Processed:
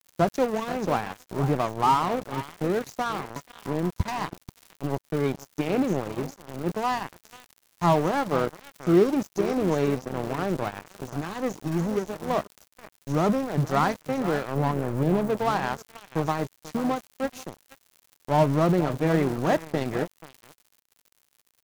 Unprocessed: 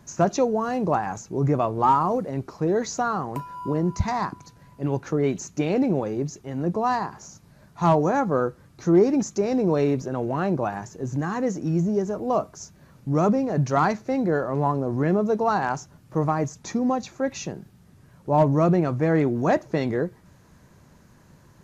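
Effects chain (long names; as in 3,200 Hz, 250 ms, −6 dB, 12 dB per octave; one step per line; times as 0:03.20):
surface crackle 560 per second −32 dBFS
0:14.55–0:15.37: octave-band graphic EQ 125/2,000/4,000 Hz +4/−11/−11 dB
single-tap delay 484 ms −11.5 dB
dead-zone distortion −29 dBFS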